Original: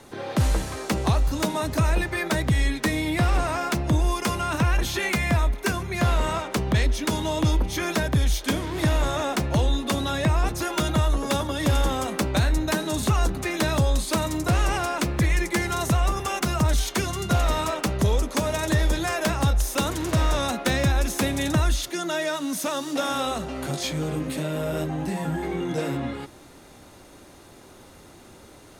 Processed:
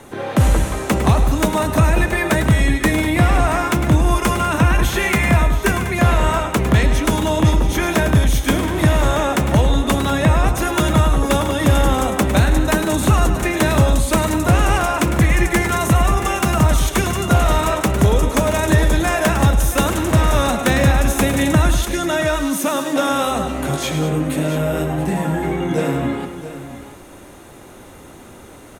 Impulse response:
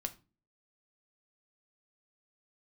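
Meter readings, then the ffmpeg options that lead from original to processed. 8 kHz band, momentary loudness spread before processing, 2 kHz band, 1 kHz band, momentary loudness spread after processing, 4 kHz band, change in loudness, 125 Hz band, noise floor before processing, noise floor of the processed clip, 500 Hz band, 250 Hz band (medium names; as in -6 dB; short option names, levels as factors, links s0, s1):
+6.5 dB, 5 LU, +8.0 dB, +8.0 dB, 5 LU, +4.5 dB, +7.5 dB, +8.0 dB, -48 dBFS, -40 dBFS, +8.0 dB, +8.5 dB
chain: -filter_complex "[0:a]equalizer=f=4700:t=o:w=0.66:g=-9,asplit=2[s0][s1];[s1]aecho=0:1:104|108|196|677:0.282|0.141|0.237|0.237[s2];[s0][s2]amix=inputs=2:normalize=0,volume=2.37"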